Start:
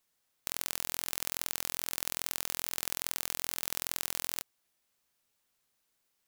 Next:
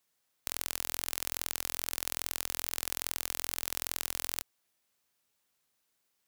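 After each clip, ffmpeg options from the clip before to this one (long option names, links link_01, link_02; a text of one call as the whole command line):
ffmpeg -i in.wav -af "highpass=frequency=60:poles=1" out.wav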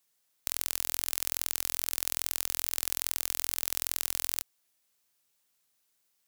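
ffmpeg -i in.wav -af "highshelf=frequency=3400:gain=6.5,volume=-2dB" out.wav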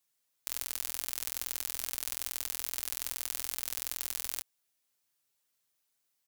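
ffmpeg -i in.wav -af "aecho=1:1:7.4:0.52,volume=-5.5dB" out.wav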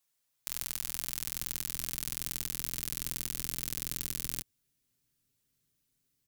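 ffmpeg -i in.wav -af "asubboost=boost=11.5:cutoff=230" out.wav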